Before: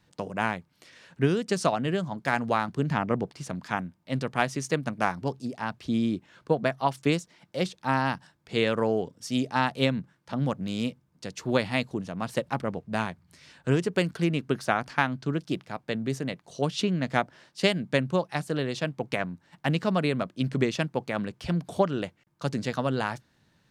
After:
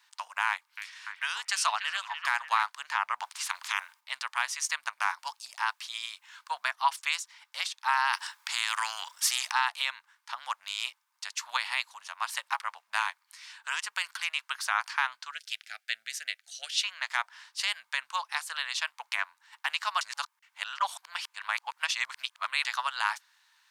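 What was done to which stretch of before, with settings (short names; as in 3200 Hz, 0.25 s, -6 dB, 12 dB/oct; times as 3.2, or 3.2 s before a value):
0.48–2.63 delay with a stepping band-pass 0.292 s, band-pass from 2600 Hz, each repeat -0.7 oct, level -6.5 dB
3.2–3.99 spectral limiter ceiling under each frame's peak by 20 dB
5.19–6.68 high shelf 5600 Hz +5.5 dB
8.13–9.52 spectral compressor 2:1
15.31–16.84 Butterworth band-stop 1000 Hz, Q 1.1
20.01–22.65 reverse
whole clip: elliptic high-pass 950 Hz, stop band 60 dB; high shelf 5300 Hz +3.5 dB; limiter -19 dBFS; gain +5 dB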